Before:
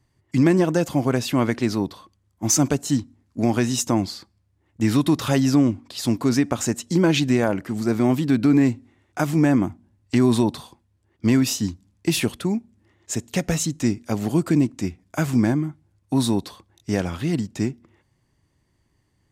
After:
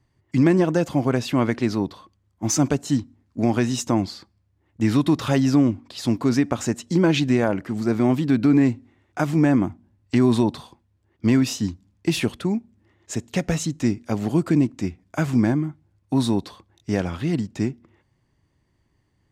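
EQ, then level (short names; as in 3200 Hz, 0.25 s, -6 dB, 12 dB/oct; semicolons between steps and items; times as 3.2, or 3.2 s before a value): high shelf 7400 Hz -11 dB; 0.0 dB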